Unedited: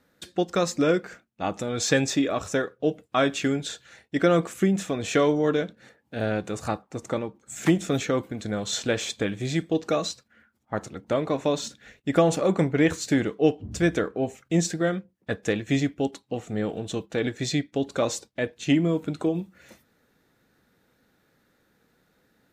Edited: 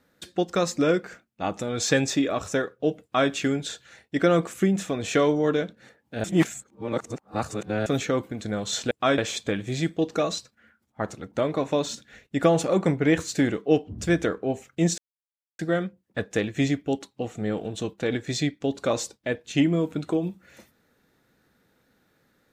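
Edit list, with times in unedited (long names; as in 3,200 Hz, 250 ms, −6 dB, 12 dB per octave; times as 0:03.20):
0:03.03–0:03.30: duplicate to 0:08.91
0:06.24–0:07.86: reverse
0:14.71: splice in silence 0.61 s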